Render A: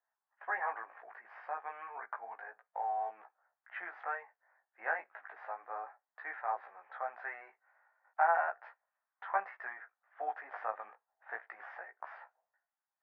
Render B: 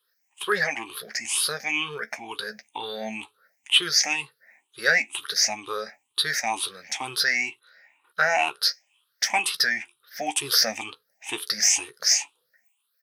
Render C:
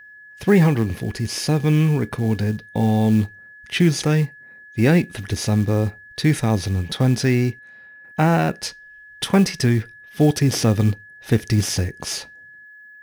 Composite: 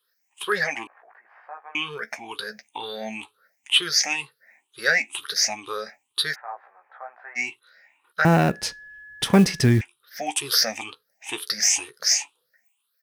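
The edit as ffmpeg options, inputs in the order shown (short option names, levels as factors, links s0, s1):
-filter_complex "[0:a]asplit=2[s0][s1];[1:a]asplit=4[s2][s3][s4][s5];[s2]atrim=end=0.872[s6];[s0]atrim=start=0.868:end=1.752[s7];[s3]atrim=start=1.748:end=6.36[s8];[s1]atrim=start=6.32:end=7.39[s9];[s4]atrim=start=7.35:end=8.252[s10];[2:a]atrim=start=8.248:end=9.812[s11];[s5]atrim=start=9.808[s12];[s6][s7]acrossfade=d=0.004:c1=hsin:c2=hsin[s13];[s13][s8]acrossfade=d=0.004:c1=hsin:c2=hsin[s14];[s14][s9]acrossfade=d=0.04:c1=tri:c2=tri[s15];[s15][s10]acrossfade=d=0.04:c1=tri:c2=tri[s16];[s16][s11]acrossfade=d=0.004:c1=hsin:c2=hsin[s17];[s17][s12]acrossfade=d=0.004:c1=hsin:c2=hsin"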